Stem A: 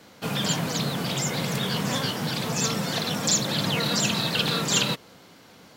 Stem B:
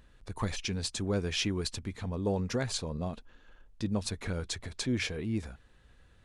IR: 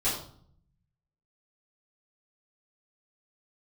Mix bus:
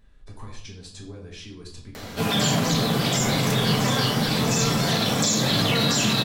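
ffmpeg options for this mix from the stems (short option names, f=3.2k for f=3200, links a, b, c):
-filter_complex "[0:a]acompressor=mode=upward:threshold=-35dB:ratio=2.5,adelay=1950,volume=-1dB,asplit=2[a][b];[b]volume=-5dB[c];[1:a]acompressor=threshold=-38dB:ratio=6,volume=-7.5dB,asplit=2[d][e];[e]volume=-4dB[f];[2:a]atrim=start_sample=2205[g];[c][f]amix=inputs=2:normalize=0[h];[h][g]afir=irnorm=-1:irlink=0[i];[a][d][i]amix=inputs=3:normalize=0,alimiter=limit=-12dB:level=0:latency=1:release=28"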